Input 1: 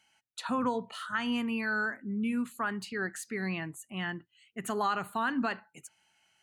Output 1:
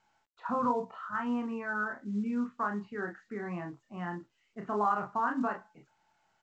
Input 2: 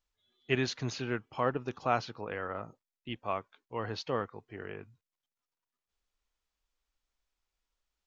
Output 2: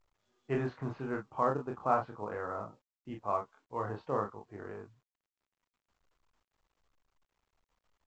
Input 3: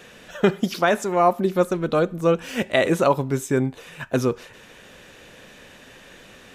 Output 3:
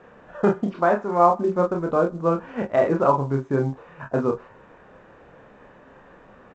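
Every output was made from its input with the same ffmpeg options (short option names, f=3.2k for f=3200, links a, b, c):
-af "lowpass=f=1.1k:t=q:w=1.7,aecho=1:1:29|44:0.631|0.335,volume=-3.5dB" -ar 16000 -c:a pcm_mulaw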